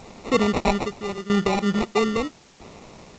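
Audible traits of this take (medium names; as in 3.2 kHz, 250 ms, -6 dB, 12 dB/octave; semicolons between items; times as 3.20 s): aliases and images of a low sample rate 1.6 kHz, jitter 0%; tremolo saw down 0.77 Hz, depth 85%; a quantiser's noise floor 10-bit, dither triangular; G.722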